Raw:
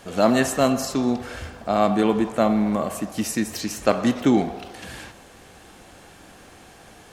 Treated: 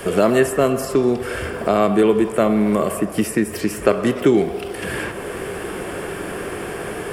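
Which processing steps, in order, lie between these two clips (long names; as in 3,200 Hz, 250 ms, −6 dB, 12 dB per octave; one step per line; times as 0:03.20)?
thirty-one-band graphic EQ 250 Hz −6 dB, 400 Hz +10 dB, 800 Hz −8 dB, 4,000 Hz −11 dB, 6,300 Hz −11 dB, 10,000 Hz +5 dB
multiband upward and downward compressor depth 70%
level +4 dB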